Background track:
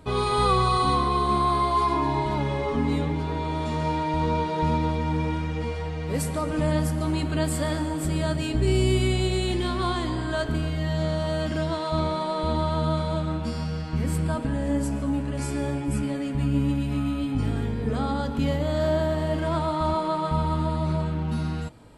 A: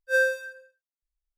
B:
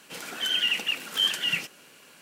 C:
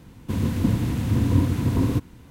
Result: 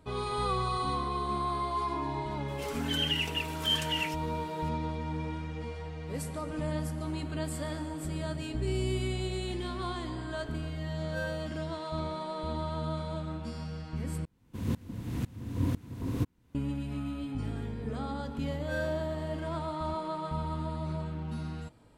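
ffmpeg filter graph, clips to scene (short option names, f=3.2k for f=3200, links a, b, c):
-filter_complex "[1:a]asplit=2[a][b];[0:a]volume=-9.5dB[c];[2:a]aecho=1:1:4.5:0.69[d];[3:a]aeval=exprs='val(0)*pow(10,-23*if(lt(mod(-2*n/s,1),2*abs(-2)/1000),1-mod(-2*n/s,1)/(2*abs(-2)/1000),(mod(-2*n/s,1)-2*abs(-2)/1000)/(1-2*abs(-2)/1000))/20)':c=same[e];[c]asplit=2[f][g];[f]atrim=end=14.254[h];[e]atrim=end=2.3,asetpts=PTS-STARTPTS,volume=-5dB[i];[g]atrim=start=16.546[j];[d]atrim=end=2.21,asetpts=PTS-STARTPTS,volume=-7.5dB,afade=t=in:d=0.004:c=hsin,afade=t=out:st=2.206:d=0.004:c=hsin,adelay=2480[k];[a]atrim=end=1.37,asetpts=PTS-STARTPTS,volume=-16dB,afade=t=in:d=0.004:c=hsin,afade=t=out:st=1.366:d=0.004:c=hsin,adelay=11030[l];[b]atrim=end=1.37,asetpts=PTS-STARTPTS,volume=-15.5dB,afade=t=in:d=0.004:c=hsin,afade=t=out:st=1.366:d=0.004:c=hsin,adelay=18580[m];[h][i]acrossfade=d=0.004:c1=hsin:c2=hsin[n];[n][j]acrossfade=d=0.004:c1=hsin:c2=hsin[o];[o][k][l][m]amix=inputs=4:normalize=0"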